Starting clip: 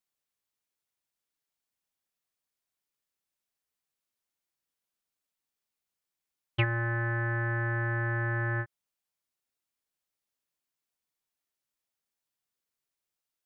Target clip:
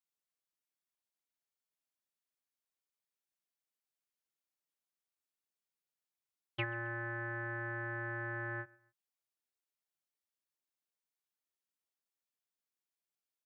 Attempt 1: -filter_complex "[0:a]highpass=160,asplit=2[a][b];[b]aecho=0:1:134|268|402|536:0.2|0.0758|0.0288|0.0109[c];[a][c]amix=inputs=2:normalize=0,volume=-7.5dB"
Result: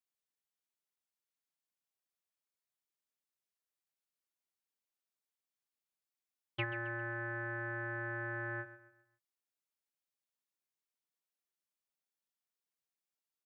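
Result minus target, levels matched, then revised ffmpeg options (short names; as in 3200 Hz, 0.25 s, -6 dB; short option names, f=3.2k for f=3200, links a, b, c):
echo-to-direct +10.5 dB
-filter_complex "[0:a]highpass=160,asplit=2[a][b];[b]aecho=0:1:134|268:0.0596|0.0226[c];[a][c]amix=inputs=2:normalize=0,volume=-7.5dB"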